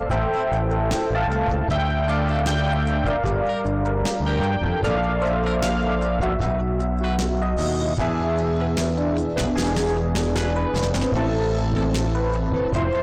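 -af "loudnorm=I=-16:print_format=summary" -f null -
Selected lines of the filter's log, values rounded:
Input Integrated:    -22.4 LUFS
Input True Peak:     -17.0 dBTP
Input LRA:             0.5 LU
Input Threshold:     -32.4 LUFS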